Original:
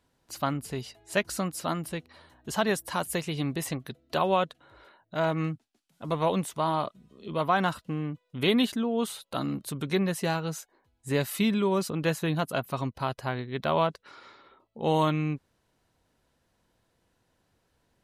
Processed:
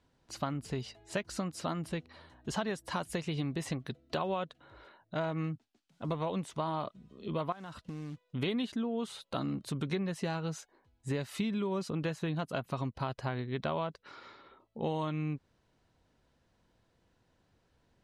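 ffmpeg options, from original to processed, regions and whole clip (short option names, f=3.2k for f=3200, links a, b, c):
-filter_complex "[0:a]asettb=1/sr,asplit=3[a][b][c];[a]atrim=end=7.524[d];[b]atrim=start=7.52:end=8.25,asetpts=PTS-STARTPTS,afade=t=in:d=0.004:c=qsin,afade=t=out:st=0.726:d=0.004:c=qsin,acompressor=threshold=-38dB:ratio=8:attack=3.2:release=140:knee=1:detection=peak,acrusher=bits=4:mode=log:mix=0:aa=0.000001[e];[c]atrim=start=8.246[f];[d][e]acrossfade=d=0.004:c1=hsin:c2=qsin[g];[g][f]acrossfade=d=0.004:c1=qsin:c2=hsin,lowpass=6.7k,lowshelf=f=320:g=3.5,acompressor=threshold=-29dB:ratio=6,volume=-1.5dB"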